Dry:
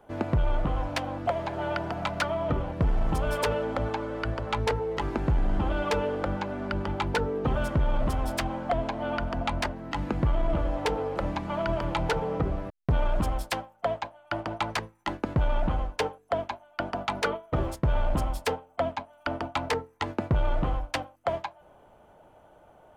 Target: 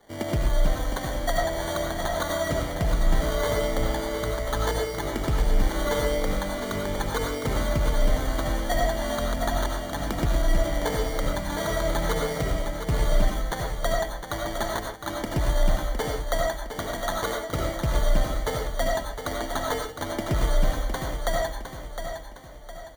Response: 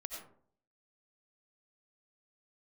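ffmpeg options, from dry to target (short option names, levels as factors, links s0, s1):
-filter_complex "[0:a]acrossover=split=130[s0][s1];[s1]acrusher=samples=17:mix=1:aa=0.000001[s2];[s0][s2]amix=inputs=2:normalize=0,aecho=1:1:710|1420|2130|2840|3550:0.398|0.167|0.0702|0.0295|0.0124[s3];[1:a]atrim=start_sample=2205,atrim=end_sample=6615[s4];[s3][s4]afir=irnorm=-1:irlink=0,volume=1.41"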